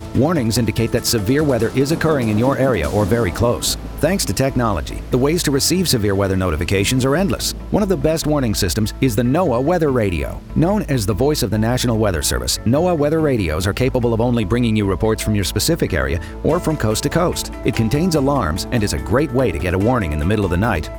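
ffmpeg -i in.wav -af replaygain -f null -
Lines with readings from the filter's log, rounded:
track_gain = -0.2 dB
track_peak = 0.575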